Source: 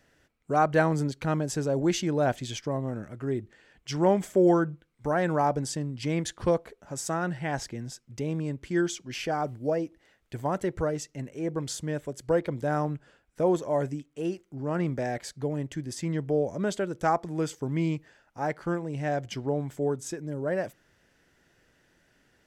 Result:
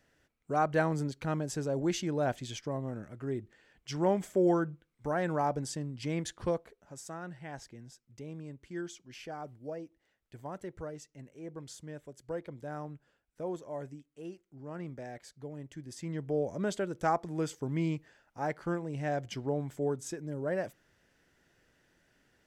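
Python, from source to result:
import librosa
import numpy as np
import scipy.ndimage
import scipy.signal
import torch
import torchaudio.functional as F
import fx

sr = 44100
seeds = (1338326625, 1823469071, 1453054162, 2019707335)

y = fx.gain(x, sr, db=fx.line((6.37, -5.5), (7.08, -13.0), (15.52, -13.0), (16.52, -4.0)))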